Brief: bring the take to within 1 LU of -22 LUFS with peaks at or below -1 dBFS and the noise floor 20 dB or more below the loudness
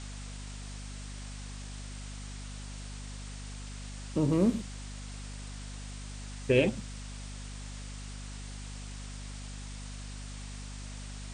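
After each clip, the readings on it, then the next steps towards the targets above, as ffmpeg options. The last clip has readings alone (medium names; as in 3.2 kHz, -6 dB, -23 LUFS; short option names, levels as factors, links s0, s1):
hum 50 Hz; highest harmonic 250 Hz; hum level -40 dBFS; noise floor -42 dBFS; noise floor target -57 dBFS; loudness -37.0 LUFS; peak level -11.5 dBFS; loudness target -22.0 LUFS
-> -af "bandreject=f=50:t=h:w=6,bandreject=f=100:t=h:w=6,bandreject=f=150:t=h:w=6,bandreject=f=200:t=h:w=6,bandreject=f=250:t=h:w=6"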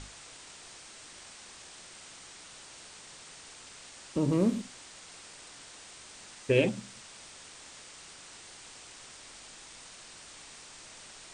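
hum not found; noise floor -50 dBFS; noise floor target -58 dBFS
-> -af "afftdn=nr=8:nf=-50"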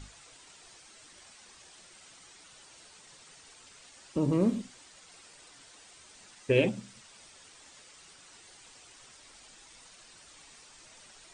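noise floor -55 dBFS; loudness -29.5 LUFS; peak level -10.5 dBFS; loudness target -22.0 LUFS
-> -af "volume=2.37"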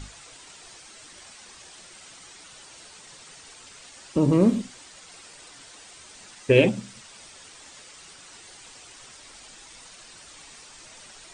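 loudness -22.0 LUFS; peak level -3.0 dBFS; noise floor -48 dBFS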